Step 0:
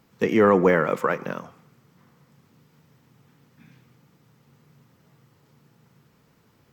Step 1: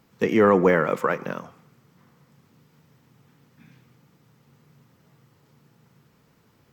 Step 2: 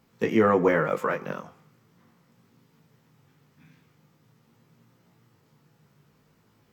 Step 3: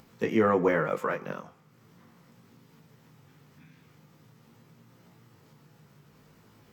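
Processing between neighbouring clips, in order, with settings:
no processing that can be heard
chorus effect 0.41 Hz, delay 17.5 ms, depth 2.2 ms
upward compression, threshold −45 dBFS; level −3 dB

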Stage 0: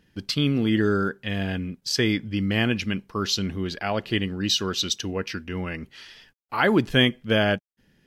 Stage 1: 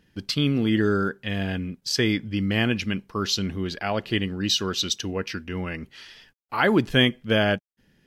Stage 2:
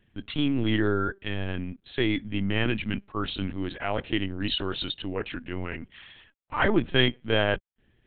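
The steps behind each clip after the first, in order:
no processing that can be heard
linear-prediction vocoder at 8 kHz pitch kept; level −2.5 dB

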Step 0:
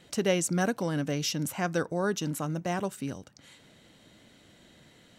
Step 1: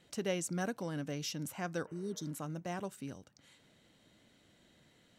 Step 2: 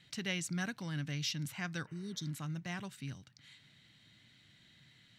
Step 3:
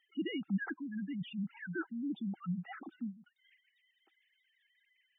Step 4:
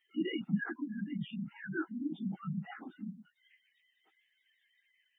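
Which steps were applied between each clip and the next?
healed spectral selection 0:01.90–0:02.28, 420–3,100 Hz after; level −9 dB
graphic EQ with 10 bands 125 Hz +12 dB, 500 Hz −9 dB, 2,000 Hz +9 dB, 4,000 Hz +10 dB; level −4.5 dB
three sine waves on the formant tracks; gate on every frequency bin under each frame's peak −10 dB strong; hollow resonant body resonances 330/780/1,300 Hz, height 16 dB, ringing for 30 ms; level −5 dB
random phases in long frames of 50 ms; level +1 dB

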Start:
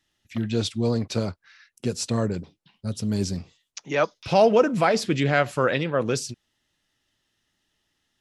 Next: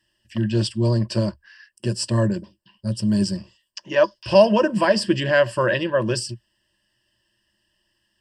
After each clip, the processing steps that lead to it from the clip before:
EQ curve with evenly spaced ripples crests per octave 1.3, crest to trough 16 dB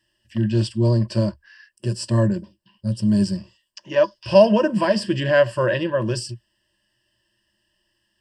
harmonic and percussive parts rebalanced harmonic +7 dB
level −5 dB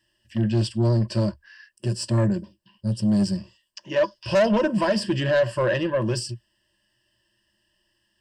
soft clipping −14.5 dBFS, distortion −11 dB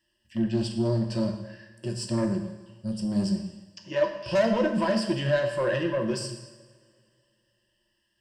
coupled-rooms reverb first 0.95 s, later 2.6 s, from −18 dB, DRR 3.5 dB
level −5.5 dB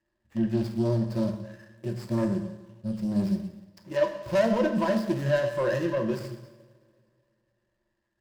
running median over 15 samples

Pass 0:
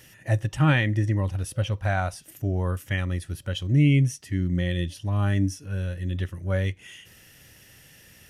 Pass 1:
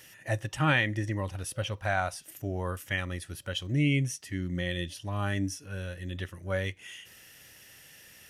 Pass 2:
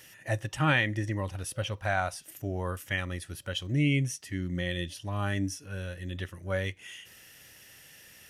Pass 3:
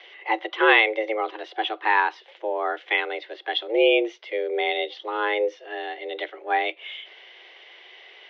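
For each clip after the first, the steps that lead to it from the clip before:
low-shelf EQ 300 Hz −10.5 dB
no processing that can be heard
single-sideband voice off tune +220 Hz 160–3,600 Hz; level +9 dB

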